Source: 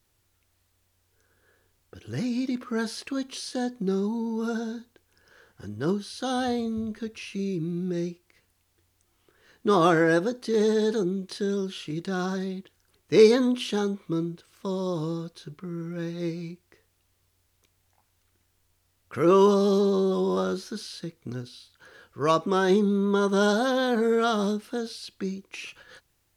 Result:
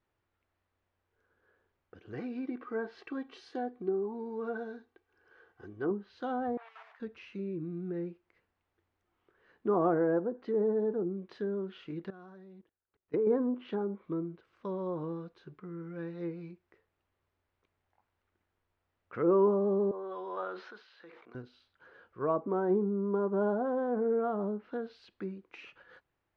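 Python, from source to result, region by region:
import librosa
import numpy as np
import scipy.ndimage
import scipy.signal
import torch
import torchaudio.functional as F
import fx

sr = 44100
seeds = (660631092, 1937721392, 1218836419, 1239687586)

y = fx.chain(x, sr, fx.low_shelf(hz=62.0, db=-9.0),
    fx.comb(ms=2.6, depth=0.54), at=(2.13, 5.91))
y = fx.chain(y, sr, fx.block_float(bits=3),
    fx.steep_highpass(hz=720.0, slope=36),
    fx.high_shelf(hz=4200.0, db=-11.5), at=(6.57, 7.0))
y = fx.chain(y, sr, fx.high_shelf(hz=2400.0, db=-6.5),
    fx.level_steps(step_db=22), at=(12.1, 13.27))
y = fx.chain(y, sr, fx.bandpass_edges(low_hz=680.0, high_hz=3400.0),
    fx.sustainer(db_per_s=38.0), at=(19.91, 21.35))
y = scipy.signal.sosfilt(scipy.signal.butter(2, 1800.0, 'lowpass', fs=sr, output='sos'), y)
y = fx.env_lowpass_down(y, sr, base_hz=850.0, full_db=-22.0)
y = fx.low_shelf(y, sr, hz=180.0, db=-10.5)
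y = F.gain(torch.from_numpy(y), -4.0).numpy()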